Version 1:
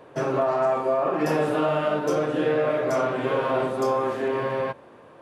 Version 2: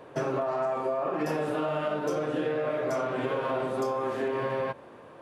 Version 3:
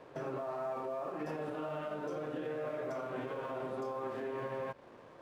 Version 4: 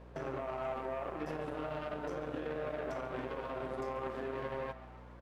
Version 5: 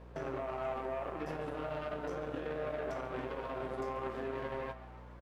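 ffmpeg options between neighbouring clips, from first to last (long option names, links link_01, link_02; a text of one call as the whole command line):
ffmpeg -i in.wav -af "acompressor=threshold=-26dB:ratio=6" out.wav
ffmpeg -i in.wav -af "highshelf=frequency=5200:gain=-11,alimiter=level_in=3dB:limit=-24dB:level=0:latency=1:release=191,volume=-3dB,aeval=exprs='sgn(val(0))*max(abs(val(0))-0.00119,0)':channel_layout=same,volume=-3.5dB" out.wav
ffmpeg -i in.wav -filter_complex "[0:a]aeval=exprs='0.0299*(cos(1*acos(clip(val(0)/0.0299,-1,1)))-cos(1*PI/2))+0.00473*(cos(3*acos(clip(val(0)/0.0299,-1,1)))-cos(3*PI/2))':channel_layout=same,aeval=exprs='val(0)+0.002*(sin(2*PI*60*n/s)+sin(2*PI*2*60*n/s)/2+sin(2*PI*3*60*n/s)/3+sin(2*PI*4*60*n/s)/4+sin(2*PI*5*60*n/s)/5)':channel_layout=same,asplit=7[link_01][link_02][link_03][link_04][link_05][link_06][link_07];[link_02]adelay=139,afreqshift=120,volume=-16dB[link_08];[link_03]adelay=278,afreqshift=240,volume=-20.3dB[link_09];[link_04]adelay=417,afreqshift=360,volume=-24.6dB[link_10];[link_05]adelay=556,afreqshift=480,volume=-28.9dB[link_11];[link_06]adelay=695,afreqshift=600,volume=-33.2dB[link_12];[link_07]adelay=834,afreqshift=720,volume=-37.5dB[link_13];[link_01][link_08][link_09][link_10][link_11][link_12][link_13]amix=inputs=7:normalize=0,volume=1.5dB" out.wav
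ffmpeg -i in.wav -filter_complex "[0:a]asplit=2[link_01][link_02];[link_02]adelay=18,volume=-11.5dB[link_03];[link_01][link_03]amix=inputs=2:normalize=0" out.wav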